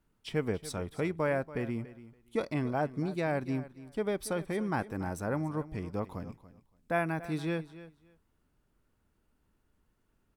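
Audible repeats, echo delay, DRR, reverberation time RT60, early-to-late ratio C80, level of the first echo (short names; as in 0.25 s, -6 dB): 2, 0.284 s, none, none, none, -16.0 dB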